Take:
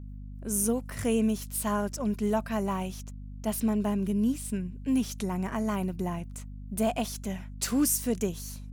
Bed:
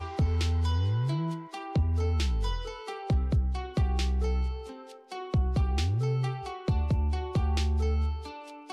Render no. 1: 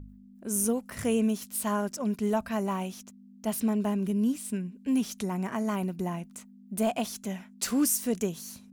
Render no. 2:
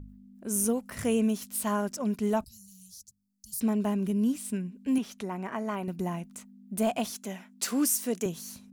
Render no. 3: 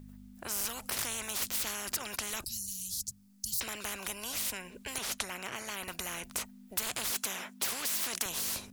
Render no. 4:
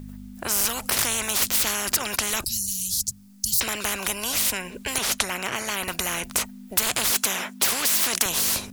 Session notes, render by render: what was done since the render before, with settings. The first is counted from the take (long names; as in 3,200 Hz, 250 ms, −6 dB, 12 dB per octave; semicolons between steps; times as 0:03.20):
hum removal 50 Hz, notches 3
0:02.44–0:03.61: Chebyshev band-stop filter 130–4,500 Hz, order 4; 0:04.98–0:05.88: bass and treble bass −8 dB, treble −10 dB; 0:07.10–0:08.26: high-pass filter 230 Hz
in parallel at 0 dB: brickwall limiter −25.5 dBFS, peak gain reduction 9 dB; on the sum: every bin compressed towards the loudest bin 10 to 1
level +11.5 dB